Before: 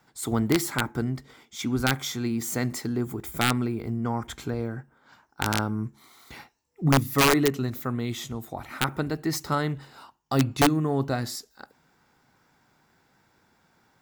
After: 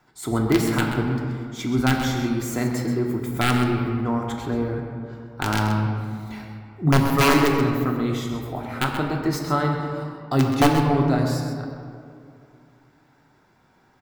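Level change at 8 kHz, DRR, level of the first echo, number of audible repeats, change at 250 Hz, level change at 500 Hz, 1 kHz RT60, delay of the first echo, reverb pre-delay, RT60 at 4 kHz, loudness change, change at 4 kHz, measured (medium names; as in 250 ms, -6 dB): -1.5 dB, 0.0 dB, -9.5 dB, 1, +5.0 dB, +4.5 dB, 2.2 s, 130 ms, 3 ms, 1.2 s, +4.0 dB, +1.0 dB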